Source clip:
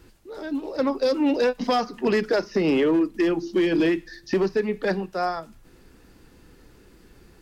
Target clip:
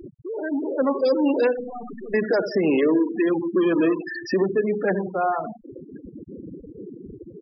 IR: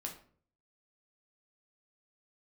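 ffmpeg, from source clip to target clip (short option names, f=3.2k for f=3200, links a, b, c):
-filter_complex "[0:a]aeval=exprs='val(0)+0.5*0.0531*sgn(val(0))':c=same,highpass=f=160:p=1,asettb=1/sr,asplit=3[a][b][c];[a]atrim=end=1.564[d];[b]atrim=start=1.56:end=2.14,asetpts=PTS-STARTPTS,afade=t=in:d=0.004:c=qsin,afade=t=out:st=0.576:d=0.004:c=qsin,aeval=exprs='(tanh(39.8*val(0)+0.35)-tanh(0.35))/39.8':c=same[e];[c]atrim=start=2.136[f];[d][e]acrossfade=d=0.004:c1=hsin:c2=qsin[g];[g][f]acrossfade=d=0.004:c1=qsin:c2=hsin,asplit=3[h][i][j];[h]afade=t=out:st=3.54:d=0.02[k];[i]equalizer=f=800:t=o:w=0.33:g=5,equalizer=f=1.25k:t=o:w=0.33:g=10,equalizer=f=2k:t=o:w=0.33:g=-10,equalizer=f=4k:t=o:w=0.33:g=-5,afade=t=in:st=3.54:d=0.02,afade=t=out:st=4.02:d=0.02[l];[j]afade=t=in:st=4.02:d=0.02[m];[k][l][m]amix=inputs=3:normalize=0,asplit=2[n][o];[o]adelay=81,lowpass=f=4.6k:p=1,volume=-10dB,asplit=2[p][q];[q]adelay=81,lowpass=f=4.6k:p=1,volume=0.48,asplit=2[r][s];[s]adelay=81,lowpass=f=4.6k:p=1,volume=0.48,asplit=2[t][u];[u]adelay=81,lowpass=f=4.6k:p=1,volume=0.48,asplit=2[v][w];[w]adelay=81,lowpass=f=4.6k:p=1,volume=0.48[x];[p][r][t][v][x]amix=inputs=5:normalize=0[y];[n][y]amix=inputs=2:normalize=0,afftfilt=real='re*gte(hypot(re,im),0.0891)':imag='im*gte(hypot(re,im),0.0891)':win_size=1024:overlap=0.75"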